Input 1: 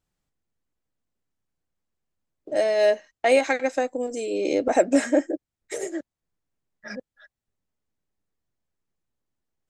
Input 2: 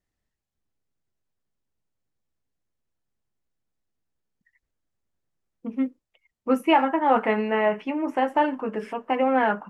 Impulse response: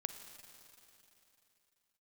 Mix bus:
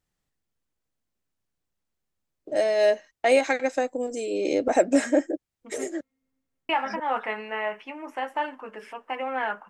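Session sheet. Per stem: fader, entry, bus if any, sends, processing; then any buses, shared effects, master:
-1.0 dB, 0.00 s, no send, none
-1.5 dB, 0.00 s, muted 5.95–6.69 s, send -24 dB, high-pass 1.3 kHz 6 dB/octave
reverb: on, RT60 3.2 s, pre-delay 38 ms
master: none

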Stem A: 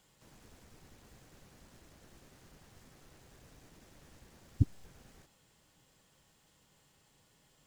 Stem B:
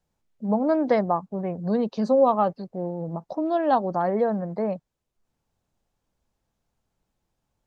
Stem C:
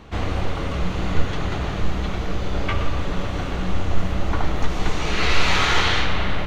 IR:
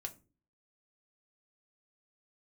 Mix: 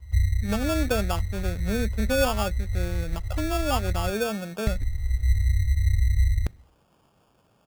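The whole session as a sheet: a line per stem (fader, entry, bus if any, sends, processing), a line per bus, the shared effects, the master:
-16.5 dB, 0.20 s, no send, spectrum-flattening compressor 2:1
-4.5 dB, 0.00 s, send -16 dB, none
+2.0 dB, 0.00 s, muted 4.10–4.67 s, send -12 dB, inverse Chebyshev band-stop 230–3000 Hz, stop band 50 dB; bass shelf 120 Hz +9.5 dB; auto duck -9 dB, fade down 0.20 s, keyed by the second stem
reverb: on, pre-delay 3 ms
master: high-pass 47 Hz 12 dB/octave; low-pass that closes with the level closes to 790 Hz, closed at -21 dBFS; sample-and-hold 22×

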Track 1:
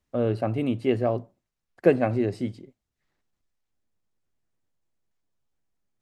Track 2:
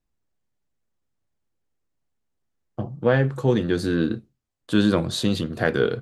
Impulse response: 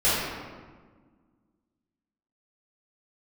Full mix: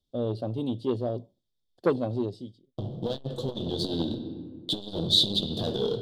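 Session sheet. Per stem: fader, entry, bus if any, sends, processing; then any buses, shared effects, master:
-3.5 dB, 0.00 s, no send, band-stop 4 kHz, Q 14; auto duck -20 dB, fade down 0.55 s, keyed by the second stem
-10.0 dB, 0.00 s, send -22 dB, peaking EQ 3 kHz +6 dB 0.2 oct; waveshaping leveller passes 3; compression 3:1, threshold -17 dBFS, peak gain reduction 6 dB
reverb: on, RT60 1.5 s, pre-delay 3 ms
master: FFT filter 530 Hz 0 dB, 2.3 kHz -25 dB, 3.5 kHz +14 dB, 6.4 kHz -3 dB; transformer saturation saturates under 740 Hz

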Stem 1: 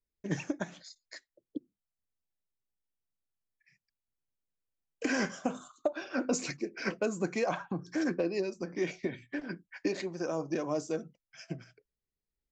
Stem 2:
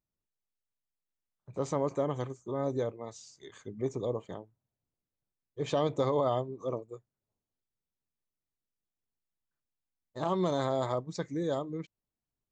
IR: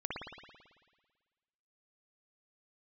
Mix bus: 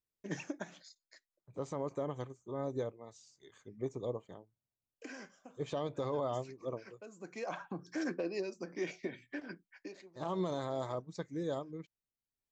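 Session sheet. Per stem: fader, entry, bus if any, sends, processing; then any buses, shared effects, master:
-4.0 dB, 0.00 s, no send, high-pass 220 Hz 6 dB/octave; auto duck -17 dB, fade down 0.70 s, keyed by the second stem
-2.0 dB, 0.00 s, no send, upward expansion 1.5:1, over -40 dBFS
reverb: none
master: peak limiter -26.5 dBFS, peak gain reduction 7.5 dB

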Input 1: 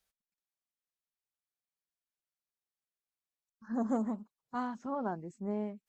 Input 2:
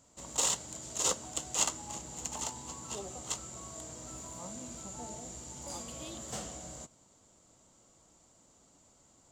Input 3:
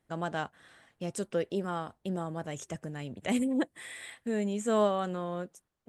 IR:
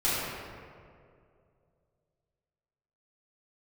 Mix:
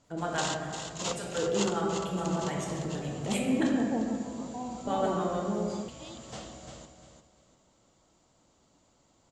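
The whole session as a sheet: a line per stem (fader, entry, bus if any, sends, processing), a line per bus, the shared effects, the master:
-1.0 dB, 0.00 s, send -15 dB, no echo send, steep low-pass 930 Hz 72 dB/octave
0.0 dB, 0.00 s, no send, echo send -7 dB, Chebyshev low-pass 4.3 kHz, order 2
0.0 dB, 0.00 s, muted 3.67–4.87 s, send -5.5 dB, no echo send, harmonic tremolo 7 Hz, depth 100%, crossover 610 Hz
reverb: on, RT60 2.3 s, pre-delay 3 ms
echo: feedback delay 349 ms, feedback 27%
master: none

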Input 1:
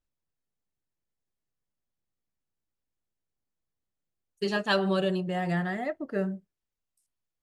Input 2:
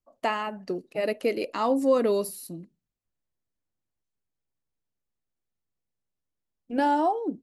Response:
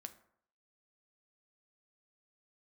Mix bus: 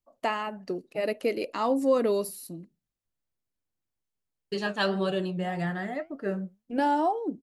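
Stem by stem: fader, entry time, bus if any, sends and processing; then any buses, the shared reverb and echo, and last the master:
+3.0 dB, 0.10 s, no send, expander -51 dBFS; flange 1.8 Hz, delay 6.5 ms, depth 5 ms, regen +72%
-1.5 dB, 0.00 s, no send, none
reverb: none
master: none

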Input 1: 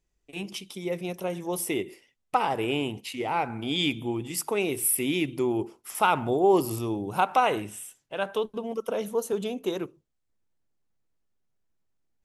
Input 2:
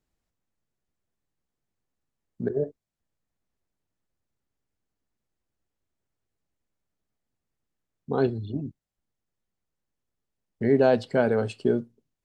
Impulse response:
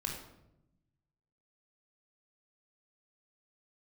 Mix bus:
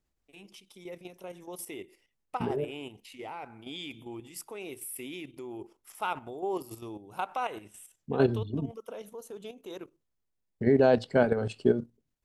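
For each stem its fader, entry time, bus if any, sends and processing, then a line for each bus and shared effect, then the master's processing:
-7.5 dB, 0.00 s, no send, peaking EQ 150 Hz -5 dB 1.4 oct
+2.0 dB, 0.00 s, no send, bass shelf 66 Hz +4.5 dB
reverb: none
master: level held to a coarse grid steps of 10 dB

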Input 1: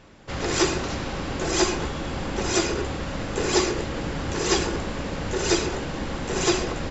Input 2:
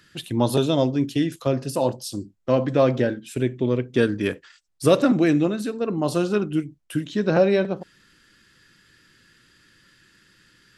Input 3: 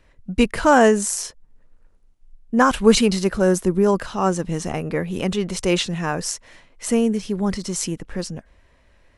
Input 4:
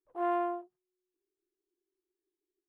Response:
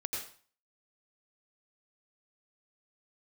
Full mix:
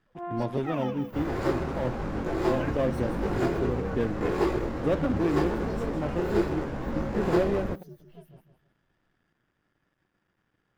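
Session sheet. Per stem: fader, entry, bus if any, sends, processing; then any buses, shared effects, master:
+1.5 dB, 0.85 s, no send, no echo send, median filter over 15 samples; detune thickener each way 28 cents
-8.5 dB, 0.00 s, no send, no echo send, dead-time distortion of 0.2 ms; treble shelf 2.9 kHz -11.5 dB; band-stop 4.2 kHz, Q 8
-18.5 dB, 0.00 s, no send, echo send -8.5 dB, frequency axis rescaled in octaves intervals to 128%
-7.5 dB, 0.00 s, send -8 dB, no echo send, none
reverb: on, RT60 0.45 s, pre-delay 80 ms
echo: feedback delay 159 ms, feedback 29%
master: treble shelf 4.4 kHz -11 dB

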